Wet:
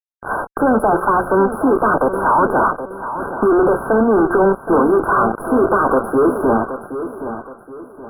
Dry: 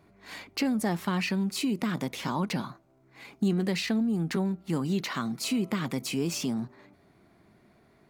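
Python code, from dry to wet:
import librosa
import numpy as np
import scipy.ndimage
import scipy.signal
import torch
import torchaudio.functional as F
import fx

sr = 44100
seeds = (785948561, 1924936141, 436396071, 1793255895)

p1 = scipy.signal.sosfilt(scipy.signal.butter(4, 400.0, 'highpass', fs=sr, output='sos'), x)
p2 = fx.high_shelf(p1, sr, hz=3400.0, db=-4.5)
p3 = fx.hum_notches(p2, sr, base_hz=60, count=9)
p4 = fx.level_steps(p3, sr, step_db=15)
p5 = p3 + (p4 * 10.0 ** (0.5 / 20.0))
p6 = fx.fuzz(p5, sr, gain_db=48.0, gate_db=-46.0)
p7 = fx.brickwall_bandstop(p6, sr, low_hz=1600.0, high_hz=9800.0)
p8 = fx.air_absorb(p7, sr, metres=110.0)
p9 = p8 + fx.echo_feedback(p8, sr, ms=772, feedback_pct=35, wet_db=-11.0, dry=0)
y = p9 * 10.0 ** (3.0 / 20.0)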